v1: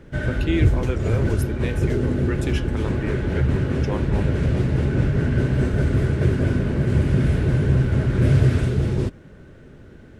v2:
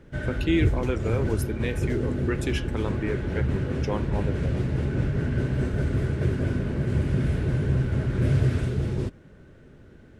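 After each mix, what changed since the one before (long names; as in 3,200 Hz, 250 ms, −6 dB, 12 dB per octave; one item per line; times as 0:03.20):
background −5.5 dB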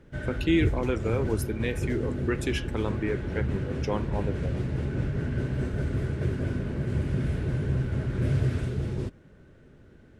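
background −3.5 dB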